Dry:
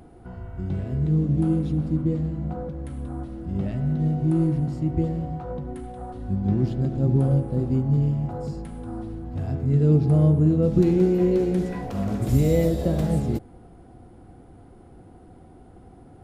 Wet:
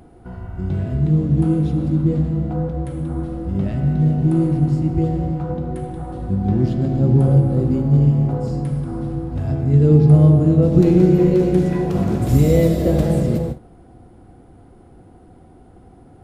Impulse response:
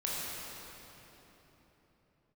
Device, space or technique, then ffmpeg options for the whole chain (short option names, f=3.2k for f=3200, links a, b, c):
keyed gated reverb: -filter_complex "[0:a]asplit=3[a][b][c];[1:a]atrim=start_sample=2205[d];[b][d]afir=irnorm=-1:irlink=0[e];[c]apad=whole_len=715765[f];[e][f]sidechaingate=range=-33dB:threshold=-41dB:ratio=16:detection=peak,volume=-7.5dB[g];[a][g]amix=inputs=2:normalize=0,volume=2dB"